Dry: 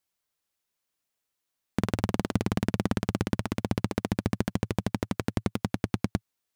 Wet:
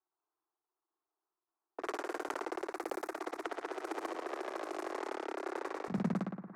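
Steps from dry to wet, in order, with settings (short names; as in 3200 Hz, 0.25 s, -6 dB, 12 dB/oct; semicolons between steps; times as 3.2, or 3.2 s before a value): block floating point 5-bit; low-pass opened by the level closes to 1200 Hz, open at -25 dBFS; level quantiser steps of 16 dB; fixed phaser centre 1300 Hz, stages 4; hard clip -35 dBFS, distortion -5 dB; high shelf 3100 Hz -9.5 dB; flutter echo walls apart 9.9 m, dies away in 0.53 s; low-pass opened by the level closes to 810 Hz, open at -36 dBFS; steep high-pass 320 Hz 72 dB/oct, from 5.88 s 150 Hz; sustainer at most 49 dB/s; gain +12.5 dB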